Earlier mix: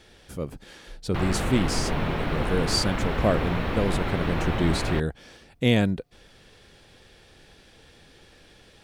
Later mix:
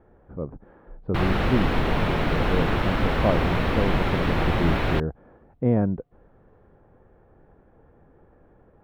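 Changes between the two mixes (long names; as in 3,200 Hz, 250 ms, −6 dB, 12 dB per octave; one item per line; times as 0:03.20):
speech: add low-pass filter 1,200 Hz 24 dB per octave
background +4.0 dB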